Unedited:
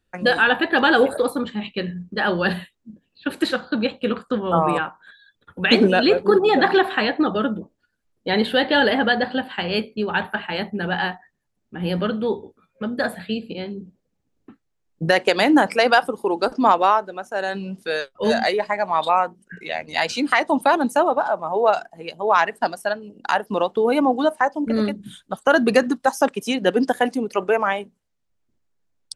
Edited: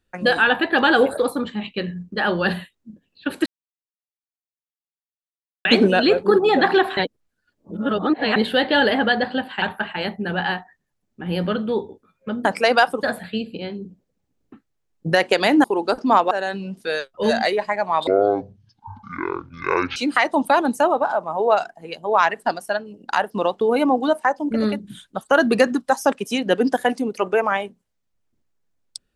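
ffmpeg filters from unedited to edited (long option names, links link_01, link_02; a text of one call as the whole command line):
ffmpeg -i in.wav -filter_complex "[0:a]asplit=12[link_01][link_02][link_03][link_04][link_05][link_06][link_07][link_08][link_09][link_10][link_11][link_12];[link_01]atrim=end=3.46,asetpts=PTS-STARTPTS,afade=type=out:start_time=3.456:duration=0.004:curve=hsin[link_13];[link_02]atrim=start=3.46:end=5.65,asetpts=PTS-STARTPTS,volume=0[link_14];[link_03]atrim=start=5.65:end=6.972,asetpts=PTS-STARTPTS,afade=type=in:duration=0.004:curve=hsin[link_15];[link_04]atrim=start=6.968:end=8.362,asetpts=PTS-STARTPTS,areverse[link_16];[link_05]atrim=start=8.358:end=9.622[link_17];[link_06]atrim=start=10.158:end=12.992[link_18];[link_07]atrim=start=15.598:end=16.182[link_19];[link_08]atrim=start=12.988:end=15.602[link_20];[link_09]atrim=start=16.178:end=16.852[link_21];[link_10]atrim=start=17.318:end=19.084[link_22];[link_11]atrim=start=19.08:end=20.12,asetpts=PTS-STARTPTS,asetrate=24255,aresample=44100,atrim=end_sample=83389,asetpts=PTS-STARTPTS[link_23];[link_12]atrim=start=20.116[link_24];[link_13][link_14][link_15]concat=n=3:v=0:a=1[link_25];[link_25][link_16]acrossfade=duration=0.004:curve1=hsin:curve2=hsin[link_26];[link_26][link_17]acrossfade=duration=0.004:curve1=hsin:curve2=hsin[link_27];[link_27][link_18]acrossfade=duration=0.004:curve1=hsin:curve2=hsin[link_28];[link_28][link_19]acrossfade=duration=0.004:curve1=hsin:curve2=hsin[link_29];[link_29][link_20]acrossfade=duration=0.004:curve1=hsin:curve2=hsin[link_30];[link_30][link_21]acrossfade=duration=0.004:curve1=hsin:curve2=hsin[link_31];[link_31][link_22]acrossfade=duration=0.004:curve1=hsin:curve2=hsin[link_32];[link_32][link_23]acrossfade=duration=0.004:curve1=hsin:curve2=hsin[link_33];[link_33][link_24]acrossfade=duration=0.004:curve1=hsin:curve2=hsin" out.wav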